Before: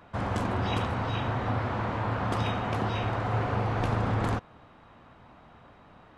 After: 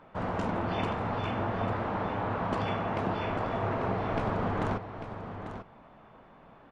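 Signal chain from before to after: low-pass 2.8 kHz 6 dB/octave; peaking EQ 83 Hz -10.5 dB 1 oct; delay 776 ms -10 dB; speed mistake 48 kHz file played as 44.1 kHz

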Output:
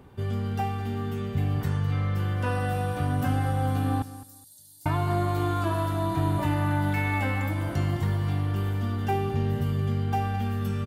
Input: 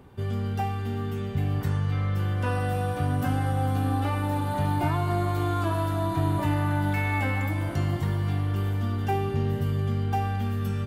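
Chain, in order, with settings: 4.02–4.86 s: inverse Chebyshev high-pass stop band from 2.7 kHz, stop band 40 dB; feedback delay 210 ms, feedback 21%, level -15.5 dB

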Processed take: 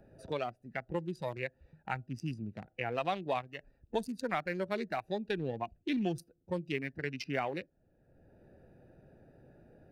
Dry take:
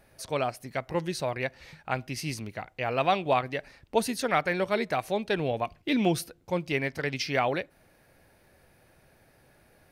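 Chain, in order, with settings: local Wiener filter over 41 samples; in parallel at -8.5 dB: saturation -27 dBFS, distortion -8 dB; on the sum: spectral noise reduction 10 dB; three bands compressed up and down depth 70%; trim -7.5 dB

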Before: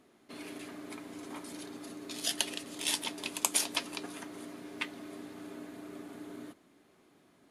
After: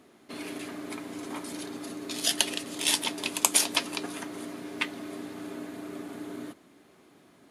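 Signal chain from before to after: high-pass 51 Hz; trim +6.5 dB

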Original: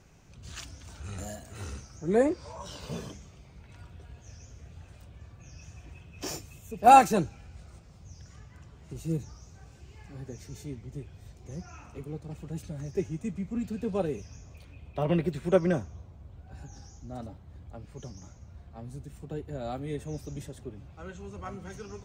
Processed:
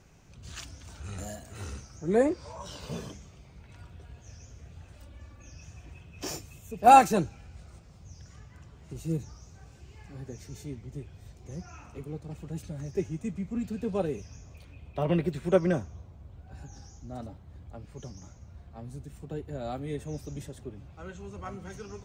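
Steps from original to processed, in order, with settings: 4.96–5.53 s: comb 3.5 ms, depth 70%

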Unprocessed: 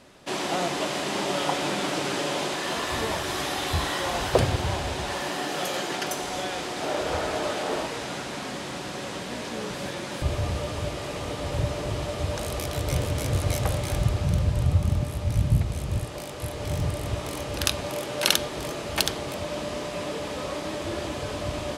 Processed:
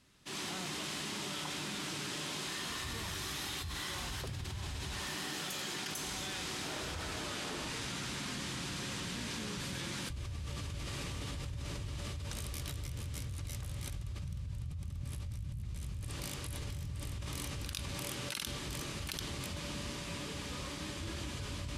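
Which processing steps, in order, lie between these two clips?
Doppler pass-by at 7.20 s, 9 m/s, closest 1.5 m; peaking EQ 990 Hz +4 dB 1.1 oct; level rider gain up to 12 dB; amplifier tone stack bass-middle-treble 6-0-2; level flattener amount 100%; trim -3.5 dB

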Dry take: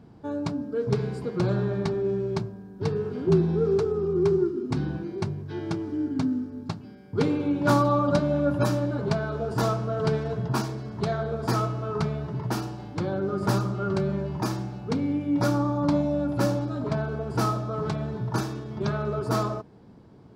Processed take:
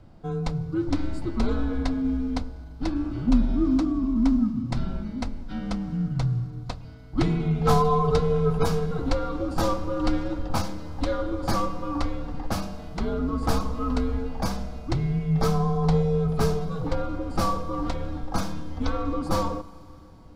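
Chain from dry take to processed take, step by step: frequency shift -130 Hz; Schroeder reverb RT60 3.6 s, combs from 33 ms, DRR 18.5 dB; trim +1.5 dB

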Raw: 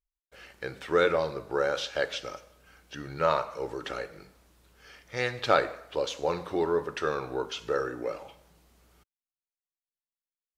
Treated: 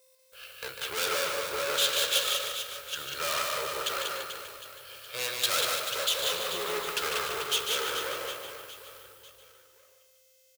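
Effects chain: hum 50 Hz, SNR 24 dB; static phaser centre 1.3 kHz, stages 8; gate with hold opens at -51 dBFS; whistle 520 Hz -55 dBFS; bass shelf 270 Hz -4 dB; valve stage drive 38 dB, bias 0.75; in parallel at +2.5 dB: compression, threshold -45 dBFS, peak gain reduction 7 dB; on the sum: feedback delay 149 ms, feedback 42%, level -6 dB; companded quantiser 6-bit; tilt EQ +4 dB/octave; on a send: reverse bouncing-ball echo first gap 190 ms, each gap 1.3×, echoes 5; on the sum: three bands expanded up and down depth 40%; trim +3 dB

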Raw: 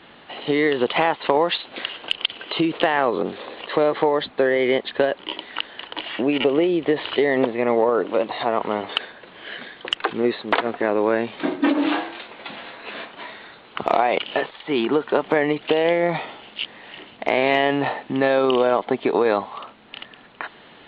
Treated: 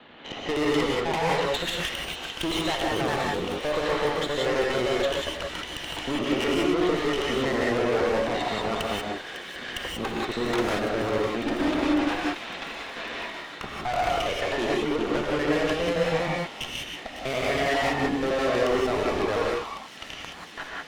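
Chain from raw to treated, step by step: slices played last to first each 81 ms, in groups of 3; valve stage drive 25 dB, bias 0.7; feedback echo behind a high-pass 552 ms, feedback 83%, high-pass 3.3 kHz, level -10 dB; gated-style reverb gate 210 ms rising, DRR -3 dB

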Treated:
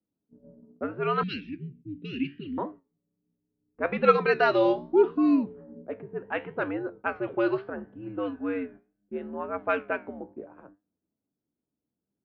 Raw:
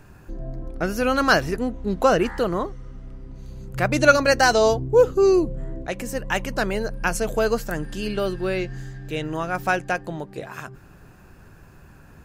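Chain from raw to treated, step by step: mistuned SSB -91 Hz 300–3500 Hz; gate -41 dBFS, range -21 dB; level-controlled noise filter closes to 300 Hz, open at -14.5 dBFS; flange 0.74 Hz, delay 9.6 ms, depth 7.9 ms, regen +74%; 1.23–2.58 s: elliptic band-stop 270–2500 Hz, stop band 80 dB

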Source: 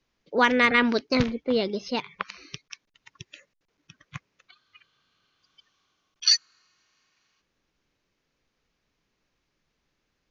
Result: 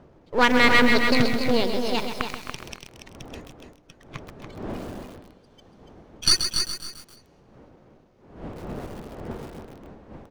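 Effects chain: partial rectifier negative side -12 dB; wind noise 460 Hz -46 dBFS; feedback delay 286 ms, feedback 17%, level -7 dB; bit-crushed delay 131 ms, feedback 55%, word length 7-bit, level -7.5 dB; trim +4 dB

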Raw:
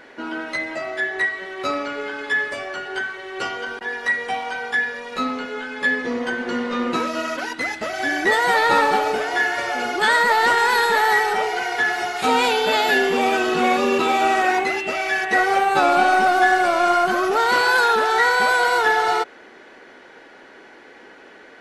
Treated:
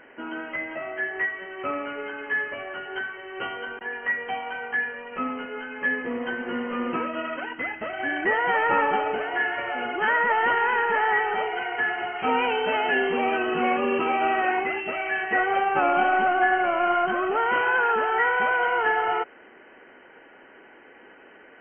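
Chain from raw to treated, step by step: brick-wall FIR low-pass 3.2 kHz; trim -5 dB

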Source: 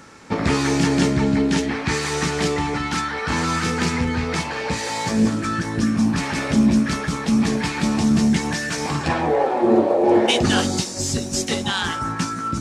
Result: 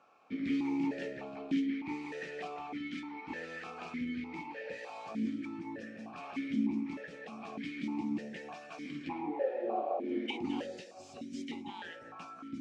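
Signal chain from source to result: stepped vowel filter 3.3 Hz; trim -6.5 dB

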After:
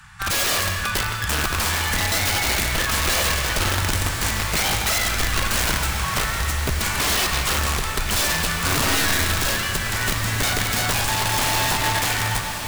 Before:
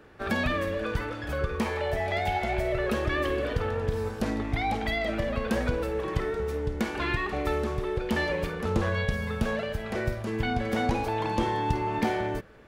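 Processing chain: inverse Chebyshev band-stop 280–560 Hz, stop band 50 dB; peaking EQ 8 kHz +14 dB 1 oct; in parallel at -2 dB: peak limiter -22.5 dBFS, peak gain reduction 9 dB; on the sum: integer overflow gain 22 dB; echo that smears into a reverb 1345 ms, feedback 64%, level -9 dB; reverberation RT60 1.7 s, pre-delay 65 ms, DRR 6.5 dB; trim +5.5 dB

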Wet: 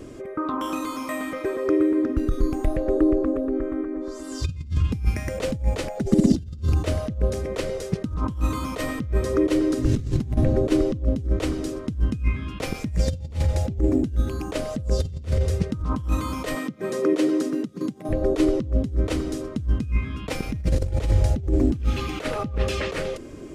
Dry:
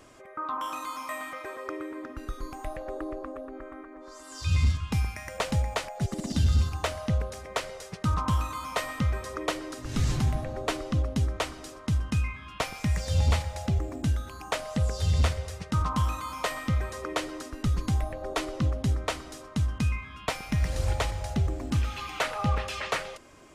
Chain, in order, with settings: compressor with a negative ratio -31 dBFS, ratio -0.5; 16.55–18.09 s: steep high-pass 150 Hz 36 dB/octave; resonant low shelf 570 Hz +11.5 dB, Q 1.5; endings held to a fixed fall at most 450 dB/s

